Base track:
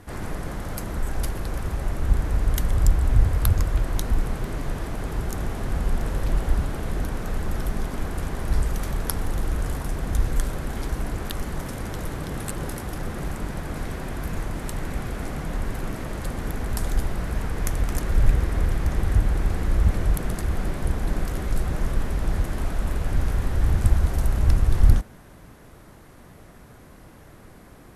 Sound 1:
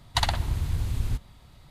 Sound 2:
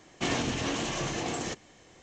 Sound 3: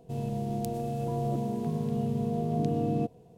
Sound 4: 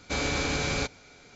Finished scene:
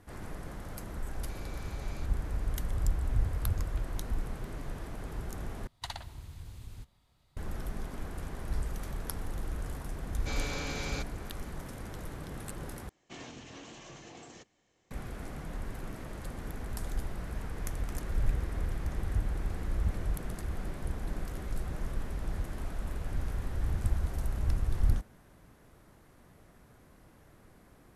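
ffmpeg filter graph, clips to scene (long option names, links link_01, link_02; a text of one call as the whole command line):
ffmpeg -i bed.wav -i cue0.wav -i cue1.wav -i cue2.wav -i cue3.wav -filter_complex "[4:a]asplit=2[link_01][link_02];[0:a]volume=-11dB[link_03];[link_01]alimiter=level_in=4.5dB:limit=-24dB:level=0:latency=1:release=71,volume=-4.5dB[link_04];[1:a]bass=frequency=250:gain=-3,treble=frequency=4000:gain=2[link_05];[link_03]asplit=3[link_06][link_07][link_08];[link_06]atrim=end=5.674[link_09];[link_05]atrim=end=1.7,asetpts=PTS-STARTPTS,volume=-15.5dB[link_10];[link_07]atrim=start=7.366:end=12.894[link_11];[2:a]atrim=end=2.02,asetpts=PTS-STARTPTS,volume=-17dB[link_12];[link_08]atrim=start=14.906[link_13];[link_04]atrim=end=1.35,asetpts=PTS-STARTPTS,volume=-15dB,afade=type=in:duration=0.004:curve=hsin,afade=type=out:start_time=1.346:duration=0.004:curve=hsin,adelay=1190[link_14];[link_02]atrim=end=1.35,asetpts=PTS-STARTPTS,volume=-9dB,afade=type=in:duration=0.004:curve=hsin,afade=type=out:start_time=1.346:duration=0.004:curve=hsin,adelay=10160[link_15];[link_09][link_10]acrossfade=duration=0.004:curve1=hsin:curve2=hsin[link_16];[link_16][link_11]acrossfade=duration=0.004:curve1=hsin:curve2=hsin[link_17];[link_17][link_12]acrossfade=duration=0.004:curve1=hsin:curve2=hsin[link_18];[link_18][link_13]acrossfade=duration=0.004:curve1=hsin:curve2=hsin[link_19];[link_19][link_14][link_15]amix=inputs=3:normalize=0" out.wav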